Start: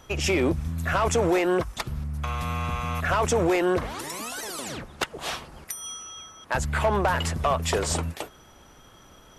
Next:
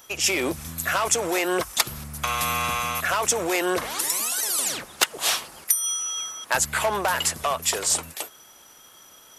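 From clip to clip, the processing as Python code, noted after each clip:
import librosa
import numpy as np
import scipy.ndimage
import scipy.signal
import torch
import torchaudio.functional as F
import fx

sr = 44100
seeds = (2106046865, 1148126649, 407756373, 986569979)

y = fx.riaa(x, sr, side='recording')
y = fx.rider(y, sr, range_db=5, speed_s=0.5)
y = y * librosa.db_to_amplitude(1.0)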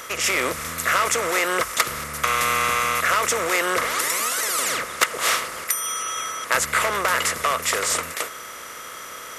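y = fx.bin_compress(x, sr, power=0.6)
y = fx.graphic_eq_31(y, sr, hz=(315, 500, 800, 1250, 2000), db=(-5, 7, -7, 11, 10))
y = y * librosa.db_to_amplitude(-4.5)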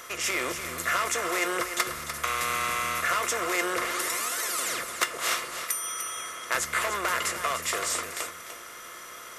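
y = fx.comb_fb(x, sr, f0_hz=350.0, decay_s=0.15, harmonics='all', damping=0.0, mix_pct=70)
y = y + 10.0 ** (-9.5 / 20.0) * np.pad(y, (int(297 * sr / 1000.0), 0))[:len(y)]
y = y * librosa.db_to_amplitude(1.0)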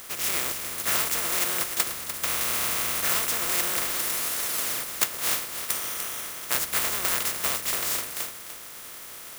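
y = fx.spec_flatten(x, sr, power=0.34)
y = (np.kron(y[::2], np.eye(2)[0]) * 2)[:len(y)]
y = y * librosa.db_to_amplitude(-1.0)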